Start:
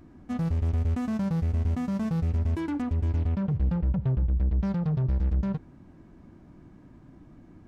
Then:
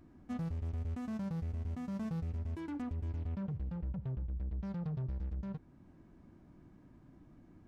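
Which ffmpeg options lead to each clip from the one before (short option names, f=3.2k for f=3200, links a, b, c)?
-af "alimiter=level_in=0.5dB:limit=-24dB:level=0:latency=1:release=467,volume=-0.5dB,volume=-8dB"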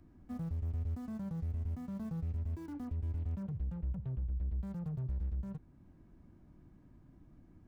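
-filter_complex "[0:a]lowshelf=f=120:g=9,acrossover=split=160|1600[a][b][c];[c]aeval=exprs='(mod(668*val(0)+1,2)-1)/668':c=same[d];[a][b][d]amix=inputs=3:normalize=0,volume=-4.5dB"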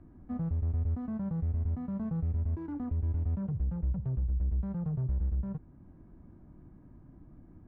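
-af "lowpass=1.5k,volume=6dB"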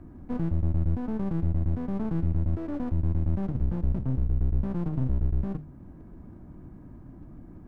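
-af "bandreject=f=50:t=h:w=6,bandreject=f=100:t=h:w=6,bandreject=f=150:t=h:w=6,aeval=exprs='clip(val(0),-1,0.00447)':c=same,volume=8.5dB"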